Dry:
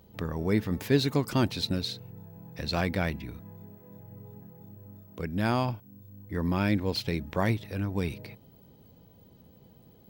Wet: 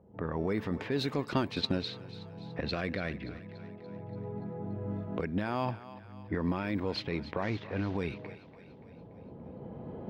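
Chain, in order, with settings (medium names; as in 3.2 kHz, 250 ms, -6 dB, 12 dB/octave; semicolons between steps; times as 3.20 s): 7.42–7.97 s: CVSD coder 32 kbps; recorder AGC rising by 8.8 dB/s; high-pass 71 Hz 6 dB/octave; level-controlled noise filter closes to 780 Hz, open at -21.5 dBFS; 2.70–3.53 s: peaking EQ 880 Hz -11.5 dB 0.39 oct; peak limiter -20.5 dBFS, peak gain reduction 9.5 dB; tone controls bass -5 dB, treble -11 dB; thinning echo 288 ms, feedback 56%, high-pass 420 Hz, level -14.5 dB; 1.15–1.82 s: transient shaper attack +7 dB, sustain -4 dB; trim +1.5 dB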